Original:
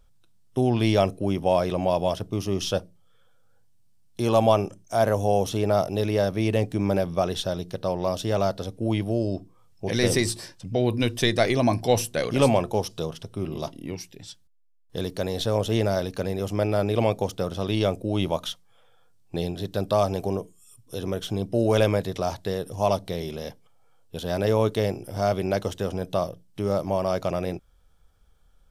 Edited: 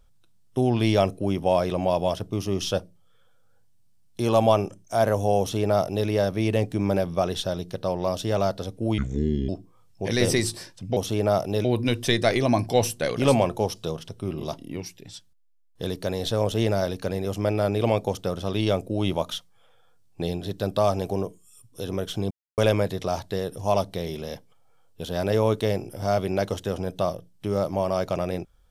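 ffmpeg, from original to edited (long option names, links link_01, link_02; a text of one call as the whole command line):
ffmpeg -i in.wav -filter_complex "[0:a]asplit=7[link_01][link_02][link_03][link_04][link_05][link_06][link_07];[link_01]atrim=end=8.984[link_08];[link_02]atrim=start=8.98:end=9.31,asetpts=PTS-STARTPTS,asetrate=28665,aresample=44100,atrim=end_sample=22389,asetpts=PTS-STARTPTS[link_09];[link_03]atrim=start=9.306:end=10.792[link_10];[link_04]atrim=start=5.398:end=6.082[link_11];[link_05]atrim=start=10.788:end=21.45,asetpts=PTS-STARTPTS,afade=type=out:start_time=10.658:duration=0.004:curve=hsin[link_12];[link_06]atrim=start=21.45:end=21.72,asetpts=PTS-STARTPTS,volume=0[link_13];[link_07]atrim=start=21.72,asetpts=PTS-STARTPTS,afade=type=in:duration=0.004:curve=hsin[link_14];[link_08][link_09]acrossfade=duration=0.004:curve1=hsin:curve2=hsin[link_15];[link_15][link_10]acrossfade=duration=0.004:curve1=hsin:curve2=hsin[link_16];[link_16][link_11]acrossfade=duration=0.004:curve1=hsin:curve2=hsin[link_17];[link_12][link_13][link_14]concat=n=3:v=0:a=1[link_18];[link_17][link_18]acrossfade=duration=0.004:curve1=hsin:curve2=hsin" out.wav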